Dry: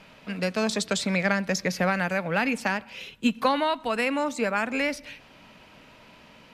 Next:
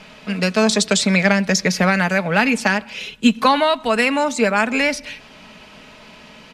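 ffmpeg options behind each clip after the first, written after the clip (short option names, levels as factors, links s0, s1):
-af "lowpass=9200,highshelf=f=4300:g=6,aecho=1:1:4.7:0.36,volume=2.37"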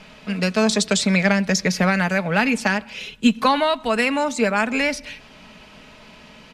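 -af "lowshelf=f=120:g=5.5,volume=0.708"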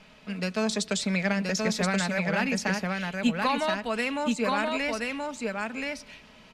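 -af "aecho=1:1:1027:0.708,volume=0.355"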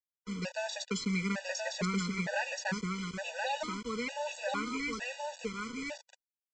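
-af "flanger=delay=3.4:depth=1.2:regen=-80:speed=1.6:shape=sinusoidal,aresample=16000,acrusher=bits=6:mix=0:aa=0.000001,aresample=44100,afftfilt=real='re*gt(sin(2*PI*1.1*pts/sr)*(1-2*mod(floor(b*sr/1024/490),2)),0)':imag='im*gt(sin(2*PI*1.1*pts/sr)*(1-2*mod(floor(b*sr/1024/490),2)),0)':win_size=1024:overlap=0.75"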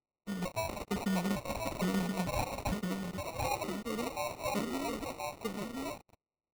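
-af "acrusher=samples=27:mix=1:aa=0.000001"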